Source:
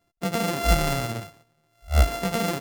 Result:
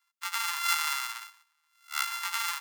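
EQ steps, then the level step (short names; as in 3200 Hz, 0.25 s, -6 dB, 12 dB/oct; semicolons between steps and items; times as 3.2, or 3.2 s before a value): steep high-pass 890 Hz 96 dB/oct; 0.0 dB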